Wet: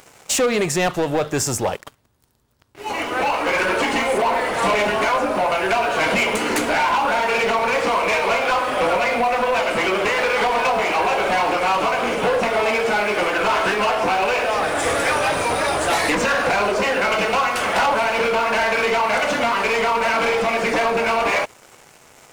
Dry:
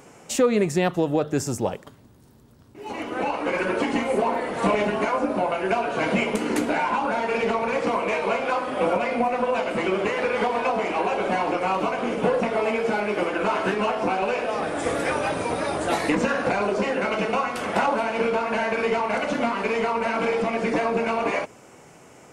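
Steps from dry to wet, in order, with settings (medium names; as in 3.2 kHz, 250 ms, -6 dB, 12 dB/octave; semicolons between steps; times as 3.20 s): peaking EQ 220 Hz -11 dB 2.5 oct; waveshaping leveller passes 3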